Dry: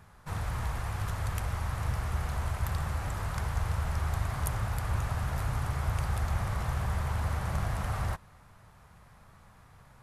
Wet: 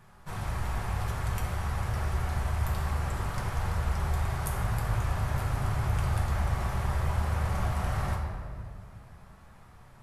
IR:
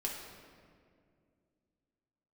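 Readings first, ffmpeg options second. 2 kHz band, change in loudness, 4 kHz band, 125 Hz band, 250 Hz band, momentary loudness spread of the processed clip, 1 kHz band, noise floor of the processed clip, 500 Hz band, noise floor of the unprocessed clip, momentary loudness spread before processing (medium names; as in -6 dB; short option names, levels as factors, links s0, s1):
+1.5 dB, +2.0 dB, +1.5 dB, +2.0 dB, +2.5 dB, 8 LU, +2.0 dB, -53 dBFS, +3.0 dB, -57 dBFS, 3 LU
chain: -filter_complex "[1:a]atrim=start_sample=2205[s0];[0:a][s0]afir=irnorm=-1:irlink=0"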